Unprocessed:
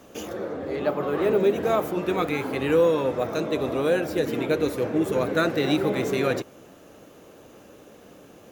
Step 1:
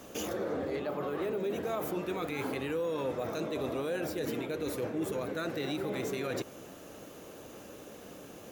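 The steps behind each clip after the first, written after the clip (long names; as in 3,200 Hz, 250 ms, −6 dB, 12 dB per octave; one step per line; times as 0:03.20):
high-shelf EQ 4,200 Hz +5 dB
reversed playback
downward compressor 6 to 1, threshold −29 dBFS, peak gain reduction 13 dB
reversed playback
brickwall limiter −25.5 dBFS, peak gain reduction 6.5 dB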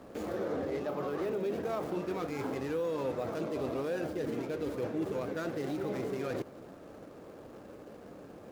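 running median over 15 samples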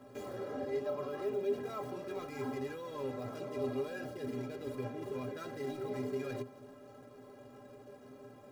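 stiff-string resonator 120 Hz, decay 0.23 s, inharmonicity 0.03
level +5 dB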